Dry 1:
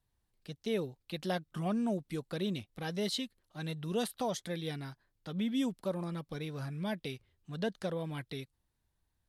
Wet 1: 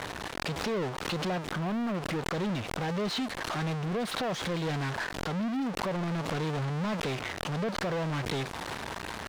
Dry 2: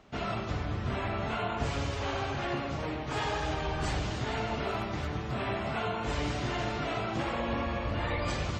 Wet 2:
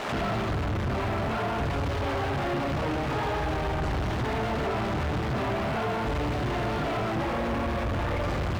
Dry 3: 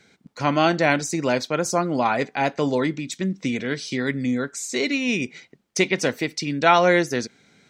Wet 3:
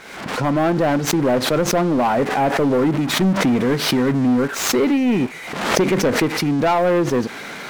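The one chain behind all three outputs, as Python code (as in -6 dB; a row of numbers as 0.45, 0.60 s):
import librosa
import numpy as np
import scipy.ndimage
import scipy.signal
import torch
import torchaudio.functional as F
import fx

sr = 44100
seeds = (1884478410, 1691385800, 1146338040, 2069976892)

y = x + 0.5 * 10.0 ** (-12.5 / 20.0) * np.diff(np.sign(x), prepend=np.sign(x[:1]))
y = scipy.signal.sosfilt(scipy.signal.bessel(2, 850.0, 'lowpass', norm='mag', fs=sr, output='sos'), y)
y = fx.rider(y, sr, range_db=4, speed_s=0.5)
y = fx.leveller(y, sr, passes=3)
y = fx.pre_swell(y, sr, db_per_s=53.0)
y = F.gain(torch.from_numpy(y), -2.0).numpy()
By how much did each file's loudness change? +5.0, +4.5, +4.0 LU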